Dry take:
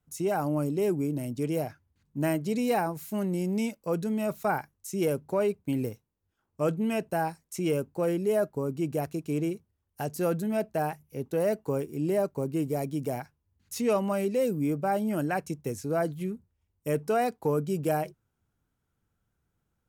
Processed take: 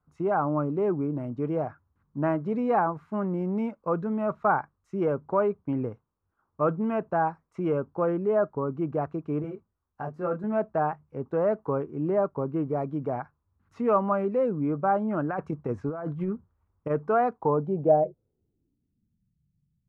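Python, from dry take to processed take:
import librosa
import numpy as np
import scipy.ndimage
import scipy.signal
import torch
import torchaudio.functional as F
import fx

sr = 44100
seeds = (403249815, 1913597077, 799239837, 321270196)

y = fx.over_compress(x, sr, threshold_db=-31.0, ratio=-0.5, at=(15.29, 16.89), fade=0.02)
y = fx.filter_sweep_lowpass(y, sr, from_hz=1200.0, to_hz=160.0, start_s=17.31, end_s=19.39, q=3.3)
y = fx.detune_double(y, sr, cents=15, at=(9.42, 10.44))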